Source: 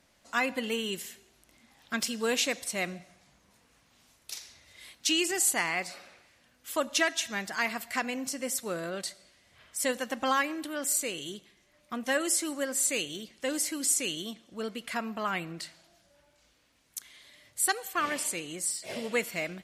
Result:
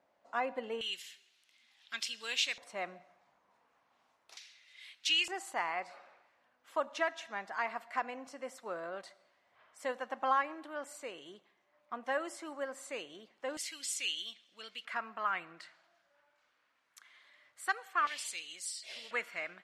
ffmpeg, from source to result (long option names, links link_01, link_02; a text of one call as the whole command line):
ffmpeg -i in.wav -af "asetnsamples=nb_out_samples=441:pad=0,asendcmd='0.81 bandpass f 3200;2.58 bandpass f 910;4.37 bandpass f 2700;5.28 bandpass f 910;13.57 bandpass f 3100;14.85 bandpass f 1300;18.07 bandpass f 3700;19.11 bandpass f 1400',bandpass=frequency=710:width_type=q:width=1.5:csg=0" out.wav